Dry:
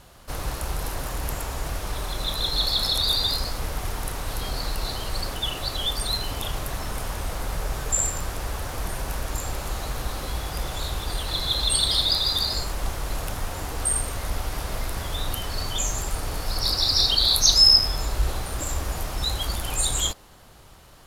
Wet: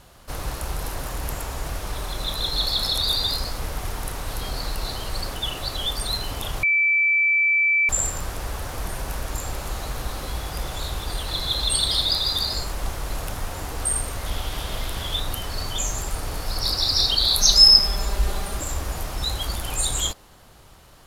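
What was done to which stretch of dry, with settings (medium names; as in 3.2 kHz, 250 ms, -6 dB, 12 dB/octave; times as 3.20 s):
6.63–7.89 s: bleep 2.32 kHz -16 dBFS
14.26–15.20 s: peaking EQ 3.3 kHz +10.5 dB 0.43 oct
17.38–18.59 s: comb 5 ms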